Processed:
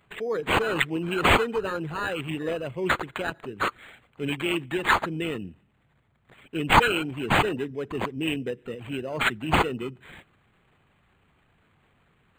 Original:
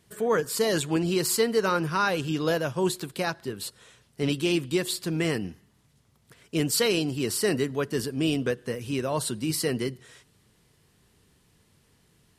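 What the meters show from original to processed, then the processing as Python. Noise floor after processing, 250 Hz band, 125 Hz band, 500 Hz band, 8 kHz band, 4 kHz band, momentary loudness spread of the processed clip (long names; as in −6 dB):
−66 dBFS, −2.5 dB, −1.5 dB, −2.0 dB, −11.5 dB, +0.5 dB, 13 LU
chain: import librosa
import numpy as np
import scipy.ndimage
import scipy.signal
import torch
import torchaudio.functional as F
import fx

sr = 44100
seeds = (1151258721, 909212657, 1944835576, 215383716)

y = fx.envelope_sharpen(x, sr, power=1.5)
y = fx.high_shelf_res(y, sr, hz=2200.0, db=14.0, q=1.5)
y = np.interp(np.arange(len(y)), np.arange(len(y))[::8], y[::8])
y = y * 10.0 ** (-3.5 / 20.0)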